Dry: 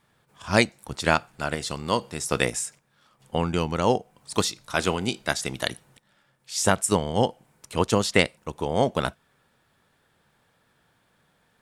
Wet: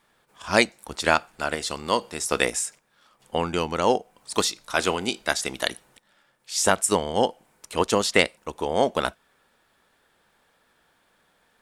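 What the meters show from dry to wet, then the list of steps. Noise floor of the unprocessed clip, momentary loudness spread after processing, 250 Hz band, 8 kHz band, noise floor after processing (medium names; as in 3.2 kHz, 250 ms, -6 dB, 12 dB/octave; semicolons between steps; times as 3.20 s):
-67 dBFS, 8 LU, -2.0 dB, +2.5 dB, -66 dBFS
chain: peaking EQ 120 Hz -13 dB 1.3 oct; in parallel at -10 dB: saturation -11 dBFS, distortion -15 dB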